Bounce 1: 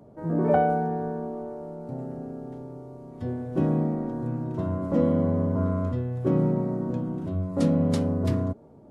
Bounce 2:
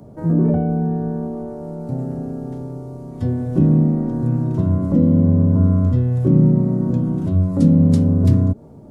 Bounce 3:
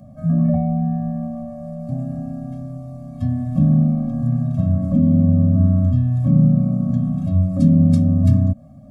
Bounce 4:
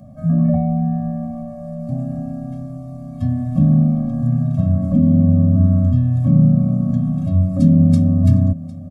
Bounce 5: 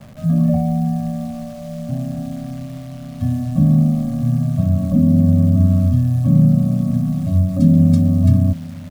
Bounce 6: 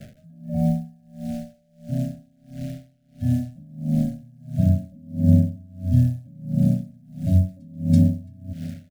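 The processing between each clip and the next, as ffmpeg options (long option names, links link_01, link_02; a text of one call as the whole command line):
ffmpeg -i in.wav -filter_complex "[0:a]bass=frequency=250:gain=7,treble=frequency=4000:gain=7,acrossover=split=390[link_01][link_02];[link_02]acompressor=threshold=-38dB:ratio=16[link_03];[link_01][link_03]amix=inputs=2:normalize=0,volume=6dB" out.wav
ffmpeg -i in.wav -af "afftfilt=real='re*eq(mod(floor(b*sr/1024/260),2),0)':imag='im*eq(mod(floor(b*sr/1024/260),2),0)':win_size=1024:overlap=0.75" out.wav
ffmpeg -i in.wav -af "aecho=1:1:755:0.112,volume=1.5dB" out.wav
ffmpeg -i in.wav -af "acrusher=bits=8:dc=4:mix=0:aa=0.000001" out.wav
ffmpeg -i in.wav -af "asuperstop=centerf=1000:order=8:qfactor=1.4,aeval=exprs='val(0)*pow(10,-33*(0.5-0.5*cos(2*PI*1.5*n/s))/20)':channel_layout=same" out.wav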